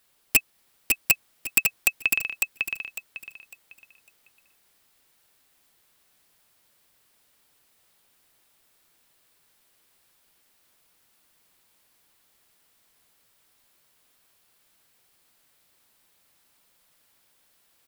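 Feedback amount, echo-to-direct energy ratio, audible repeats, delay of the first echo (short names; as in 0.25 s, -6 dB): 27%, -3.5 dB, 3, 0.552 s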